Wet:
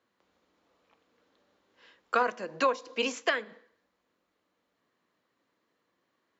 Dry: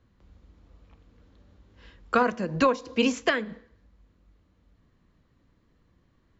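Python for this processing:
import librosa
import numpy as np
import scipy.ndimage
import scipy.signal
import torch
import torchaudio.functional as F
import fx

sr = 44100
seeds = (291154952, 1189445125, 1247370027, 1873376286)

y = scipy.signal.sosfilt(scipy.signal.butter(2, 450.0, 'highpass', fs=sr, output='sos'), x)
y = y * 10.0 ** (-2.5 / 20.0)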